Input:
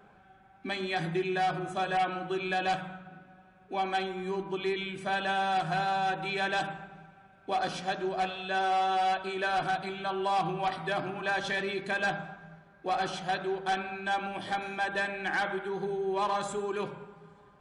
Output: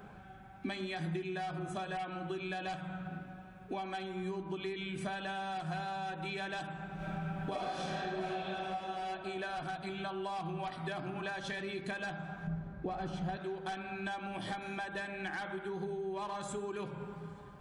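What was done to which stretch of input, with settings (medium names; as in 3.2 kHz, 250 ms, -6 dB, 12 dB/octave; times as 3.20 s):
6.96–8.43 s: reverb throw, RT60 2.6 s, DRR -12 dB
12.47–13.37 s: tilt EQ -3 dB/octave
whole clip: treble shelf 8.5 kHz +6 dB; compression 6:1, threshold -42 dBFS; tone controls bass +7 dB, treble 0 dB; trim +3.5 dB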